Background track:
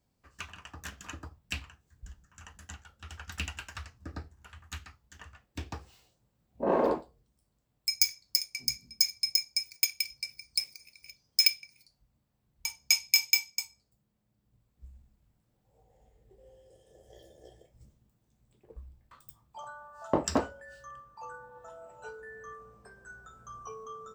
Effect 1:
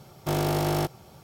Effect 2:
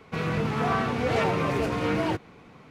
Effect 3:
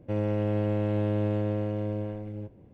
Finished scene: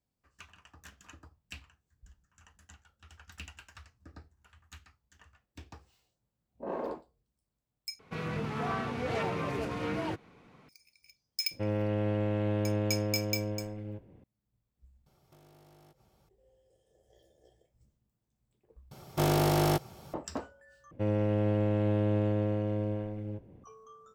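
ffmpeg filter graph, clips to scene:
-filter_complex "[3:a]asplit=2[a][b];[1:a]asplit=2[c][d];[0:a]volume=-10dB[e];[a]equalizer=f=2.3k:t=o:w=2.5:g=4[f];[c]acompressor=threshold=-39dB:ratio=6:attack=3.2:release=140:knee=1:detection=peak[g];[e]asplit=4[h][i][j][k];[h]atrim=end=7.994[l];[2:a]atrim=end=2.7,asetpts=PTS-STARTPTS,volume=-8dB[m];[i]atrim=start=10.686:end=18.914[n];[d]atrim=end=1.23,asetpts=PTS-STARTPTS,volume=-0.5dB[o];[j]atrim=start=20.136:end=20.914[p];[b]atrim=end=2.73,asetpts=PTS-STARTPTS,volume=-1dB[q];[k]atrim=start=23.636[r];[f]atrim=end=2.73,asetpts=PTS-STARTPTS,volume=-3.5dB,afade=t=in:d=0.004:c=hsin,afade=t=out:st=2.726:d=0.004:c=hsin,adelay=11510[s];[g]atrim=end=1.23,asetpts=PTS-STARTPTS,volume=-18dB,afade=t=in:d=0.004:c=hsin,afade=t=out:st=1.226:d=0.004:c=hsin,adelay=15060[t];[l][m]acrossfade=d=0.004:c1=hsin:c2=hsin[u];[u][n]acrossfade=d=0.004:c1=hsin:c2=hsin[v];[v][o]acrossfade=d=0.004:c1=hsin:c2=hsin[w];[w][p]acrossfade=d=0.004:c1=hsin:c2=hsin[x];[x][q]acrossfade=d=0.004:c1=hsin:c2=hsin[y];[y][r]acrossfade=d=0.004:c1=hsin:c2=hsin[z];[z][s][t]amix=inputs=3:normalize=0"

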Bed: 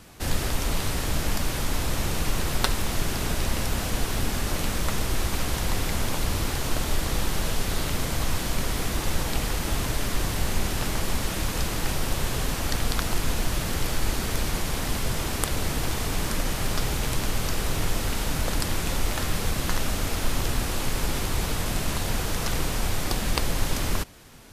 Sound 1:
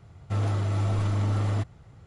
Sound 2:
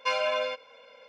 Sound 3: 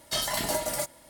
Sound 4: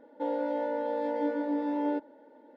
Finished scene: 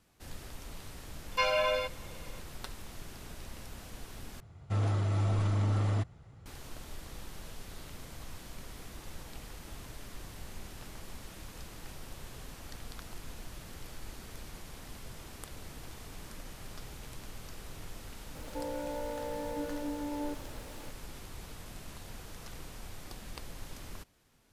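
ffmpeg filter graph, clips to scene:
-filter_complex "[0:a]volume=-19.5dB[a];[4:a]aeval=exprs='val(0)+0.5*0.0119*sgn(val(0))':c=same[b];[a]asplit=2[c][d];[c]atrim=end=4.404[e];[1:a]atrim=end=2.06,asetpts=PTS-STARTPTS,volume=-3.5dB[f];[d]atrim=start=6.456[g];[2:a]atrim=end=1.08,asetpts=PTS-STARTPTS,volume=-1dB,afade=t=in:d=0.004:c=hsin,afade=t=out:st=1.076:d=0.004:c=hsin,adelay=1320[h];[b]atrim=end=2.56,asetpts=PTS-STARTPTS,volume=-8.5dB,afade=t=in:d=0.004:c=hsin,afade=t=out:st=2.556:d=0.004:c=hsin,adelay=18350[i];[e][f]acrossfade=d=0.004:c1=hsin:c2=hsin[j];[j][g]acrossfade=d=0.004:c1=hsin:c2=hsin[k];[k][h][i]amix=inputs=3:normalize=0"

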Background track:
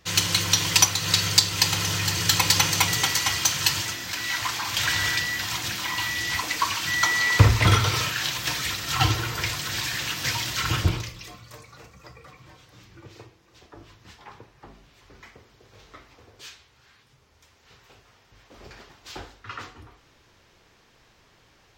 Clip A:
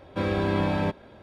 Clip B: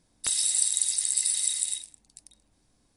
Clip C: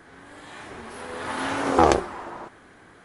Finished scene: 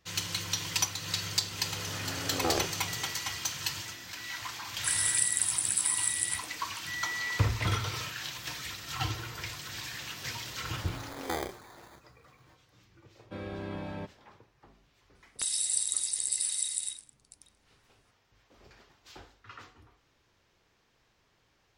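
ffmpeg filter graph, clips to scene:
-filter_complex "[3:a]asplit=2[a][b];[2:a]asplit=2[c][d];[0:a]volume=-11.5dB[e];[a]equalizer=f=960:t=o:w=0.29:g=-11.5[f];[c]aemphasis=mode=production:type=75fm[g];[b]acrusher=samples=16:mix=1:aa=0.000001[h];[1:a]bandreject=f=1k:w=26[i];[f]atrim=end=3.04,asetpts=PTS-STARTPTS,volume=-12.5dB,afade=t=in:d=0.004:c=hsin,afade=t=out:st=3.036:d=0.004:c=hsin,adelay=660[j];[g]atrim=end=2.96,asetpts=PTS-STARTPTS,volume=-15.5dB,afade=t=in:d=0.004:c=hsin,afade=t=out:st=2.956:d=0.004:c=hsin,adelay=4600[k];[h]atrim=end=3.04,asetpts=PTS-STARTPTS,volume=-17dB,afade=t=in:d=0.004:c=hsin,afade=t=out:st=3.036:d=0.004:c=hsin,adelay=9510[l];[i]atrim=end=1.22,asetpts=PTS-STARTPTS,volume=-13.5dB,afade=t=in:d=0.004:c=hsin,afade=t=out:st=1.216:d=0.004:c=hsin,adelay=13150[m];[d]atrim=end=2.96,asetpts=PTS-STARTPTS,volume=-5dB,afade=t=in:d=0.004:c=hsin,afade=t=out:st=2.956:d=0.004:c=hsin,adelay=15150[n];[e][j][k][l][m][n]amix=inputs=6:normalize=0"

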